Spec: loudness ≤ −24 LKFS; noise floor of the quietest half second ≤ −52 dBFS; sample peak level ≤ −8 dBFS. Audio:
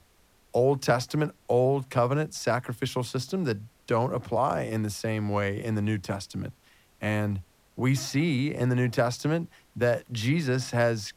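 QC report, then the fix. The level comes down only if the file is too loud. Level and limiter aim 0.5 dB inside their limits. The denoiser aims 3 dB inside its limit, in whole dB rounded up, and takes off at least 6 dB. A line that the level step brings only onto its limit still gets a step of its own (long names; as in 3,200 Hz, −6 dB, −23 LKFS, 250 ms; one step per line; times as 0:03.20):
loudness −28.0 LKFS: in spec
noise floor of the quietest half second −62 dBFS: in spec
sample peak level −11.0 dBFS: in spec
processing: no processing needed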